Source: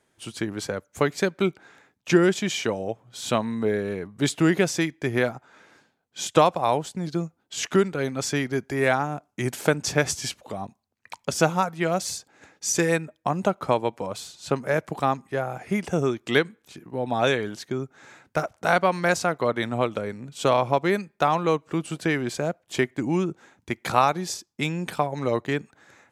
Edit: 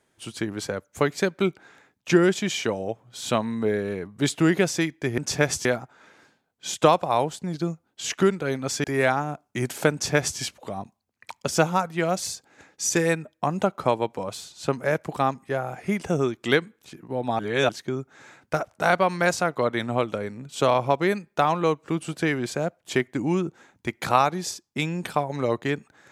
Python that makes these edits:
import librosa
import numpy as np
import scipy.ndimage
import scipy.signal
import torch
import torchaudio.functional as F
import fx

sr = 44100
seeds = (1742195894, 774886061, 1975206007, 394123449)

y = fx.edit(x, sr, fx.cut(start_s=8.37, length_s=0.3),
    fx.duplicate(start_s=9.75, length_s=0.47, to_s=5.18),
    fx.reverse_span(start_s=17.22, length_s=0.3), tone=tone)